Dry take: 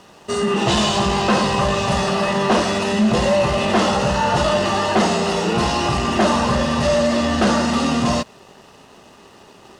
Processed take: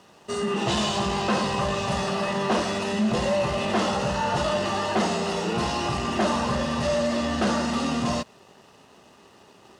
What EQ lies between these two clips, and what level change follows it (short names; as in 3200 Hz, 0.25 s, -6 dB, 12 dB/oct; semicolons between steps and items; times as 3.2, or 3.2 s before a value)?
HPF 56 Hz; -7.0 dB